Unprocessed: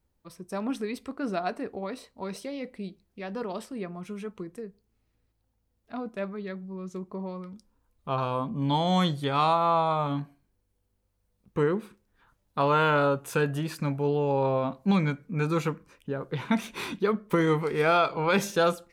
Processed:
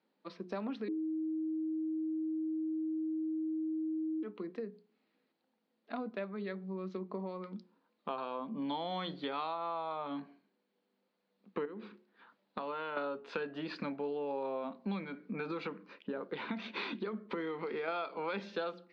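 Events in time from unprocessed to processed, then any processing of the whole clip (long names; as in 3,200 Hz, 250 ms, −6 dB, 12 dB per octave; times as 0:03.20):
0:00.88–0:04.23: beep over 316 Hz −23 dBFS
0:11.65–0:12.97: downward compressor, threshold −33 dBFS
0:15.04–0:17.88: downward compressor, threshold −26 dBFS
whole clip: Chebyshev band-pass filter 200–4,400 Hz, order 4; mains-hum notches 60/120/180/240/300/360/420 Hz; downward compressor 5 to 1, threshold −40 dBFS; level +3.5 dB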